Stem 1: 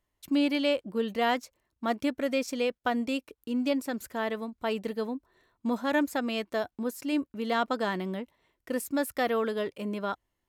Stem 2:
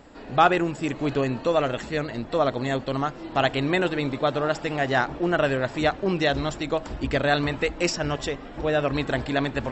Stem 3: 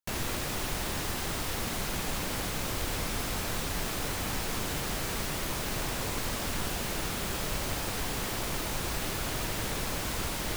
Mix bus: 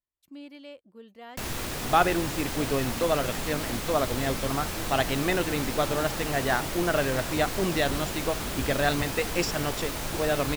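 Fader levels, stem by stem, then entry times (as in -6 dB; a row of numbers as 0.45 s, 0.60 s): -18.5 dB, -3.5 dB, 0.0 dB; 0.00 s, 1.55 s, 1.30 s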